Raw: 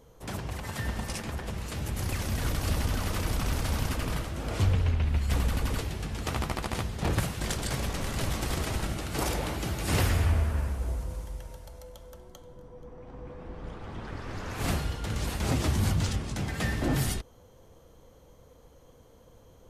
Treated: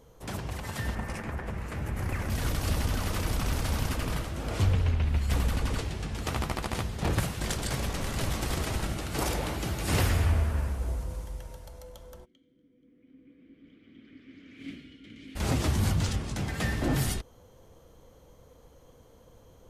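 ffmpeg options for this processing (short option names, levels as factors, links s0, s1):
-filter_complex "[0:a]asettb=1/sr,asplit=3[s0][s1][s2];[s0]atrim=end=0.954[s3];[s1]atrim=start=0.95:end=2.3,asetpts=PTS-STARTPTS,afade=t=in:d=0.004:c=qsin,afade=t=out:st=1.346:d=0.004:c=qsin,highshelf=f=2700:t=q:w=1.5:g=-8.5[s4];[s2]atrim=start=2.296[s5];[s3][s4]acrossfade=d=0.004:c1=hsin:c2=qsin[s6];[s6][s5]acrossfade=d=0.004:c1=qsin:c2=hsin,asettb=1/sr,asplit=3[s7][s8][s9];[s7]atrim=end=5.564[s10];[s8]atrim=start=5.56:end=6.15,asetpts=PTS-STARTPTS,afade=t=in:d=0.004:c=qsin,afade=t=out:st=0.586:d=0.004:c=qsin,lowpass=10000[s11];[s9]atrim=start=6.146[s12];[s10][s11]acrossfade=d=0.004:c1=hsin:c2=qsin[s13];[s13][s12]acrossfade=d=0.004:c1=qsin:c2=hsin,asplit=3[s14][s15][s16];[s14]afade=t=out:st=12.24:d=0.02[s17];[s15]asplit=3[s18][s19][s20];[s18]bandpass=f=270:t=q:w=8,volume=1[s21];[s19]bandpass=f=2290:t=q:w=8,volume=0.501[s22];[s20]bandpass=f=3010:t=q:w=8,volume=0.355[s23];[s21][s22][s23]amix=inputs=3:normalize=0,afade=t=in:st=12.24:d=0.02,afade=t=out:st=15.35:d=0.02[s24];[s16]afade=t=in:st=15.35:d=0.02[s25];[s17][s24][s25]amix=inputs=3:normalize=0"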